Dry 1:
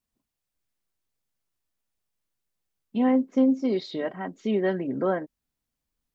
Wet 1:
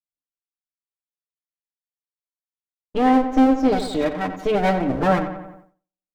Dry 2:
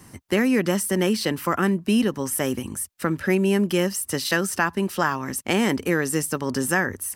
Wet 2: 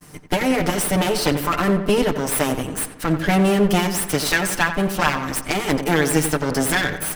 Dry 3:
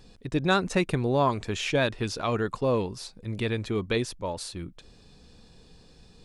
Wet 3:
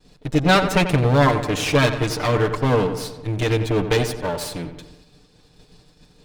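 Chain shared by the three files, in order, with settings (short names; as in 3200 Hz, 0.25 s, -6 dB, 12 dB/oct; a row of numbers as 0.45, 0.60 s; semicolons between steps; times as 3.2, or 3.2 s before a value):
minimum comb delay 6.7 ms; darkening echo 90 ms, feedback 58%, low-pass 3000 Hz, level -9.5 dB; expander -48 dBFS; match loudness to -20 LUFS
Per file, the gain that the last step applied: +8.0, +6.0, +8.5 dB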